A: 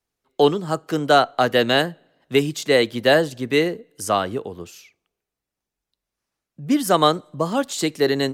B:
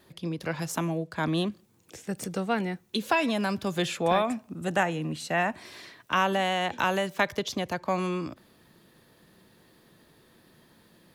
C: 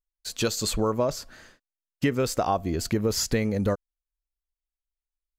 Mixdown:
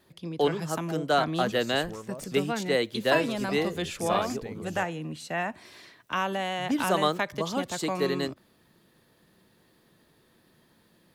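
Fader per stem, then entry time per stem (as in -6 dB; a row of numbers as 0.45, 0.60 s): -9.0, -4.0, -16.0 dB; 0.00, 0.00, 1.10 s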